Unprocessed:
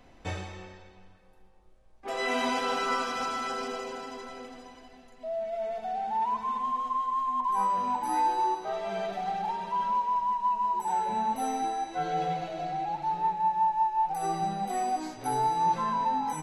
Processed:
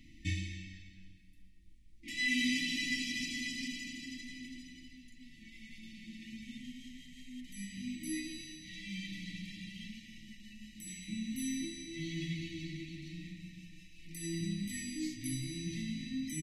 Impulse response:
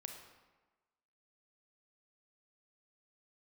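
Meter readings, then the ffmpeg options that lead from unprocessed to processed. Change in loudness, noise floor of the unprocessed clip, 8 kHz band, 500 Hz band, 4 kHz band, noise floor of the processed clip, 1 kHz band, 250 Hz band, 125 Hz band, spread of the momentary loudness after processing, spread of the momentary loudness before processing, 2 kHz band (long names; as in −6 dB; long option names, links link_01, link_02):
−9.5 dB, −55 dBFS, +1.0 dB, below −20 dB, +1.0 dB, −57 dBFS, below −40 dB, +0.5 dB, +1.0 dB, 19 LU, 11 LU, −1.0 dB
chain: -filter_complex "[0:a]afftfilt=real='re*(1-between(b*sr/4096,340,1800))':imag='im*(1-between(b*sr/4096,340,1800))':win_size=4096:overlap=0.75,asplit=4[link_01][link_02][link_03][link_04];[link_02]adelay=229,afreqshift=-79,volume=-21.5dB[link_05];[link_03]adelay=458,afreqshift=-158,volume=-30.6dB[link_06];[link_04]adelay=687,afreqshift=-237,volume=-39.7dB[link_07];[link_01][link_05][link_06][link_07]amix=inputs=4:normalize=0,volume=1dB"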